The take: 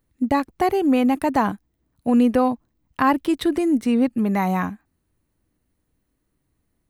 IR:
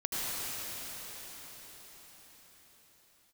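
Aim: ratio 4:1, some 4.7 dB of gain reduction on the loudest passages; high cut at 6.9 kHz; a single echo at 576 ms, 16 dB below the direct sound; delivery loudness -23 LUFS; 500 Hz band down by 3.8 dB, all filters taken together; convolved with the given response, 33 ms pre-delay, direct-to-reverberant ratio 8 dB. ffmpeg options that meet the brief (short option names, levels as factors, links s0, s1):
-filter_complex "[0:a]lowpass=6900,equalizer=f=500:t=o:g=-5,acompressor=threshold=0.1:ratio=4,aecho=1:1:576:0.158,asplit=2[s0][s1];[1:a]atrim=start_sample=2205,adelay=33[s2];[s1][s2]afir=irnorm=-1:irlink=0,volume=0.15[s3];[s0][s3]amix=inputs=2:normalize=0,volume=1.33"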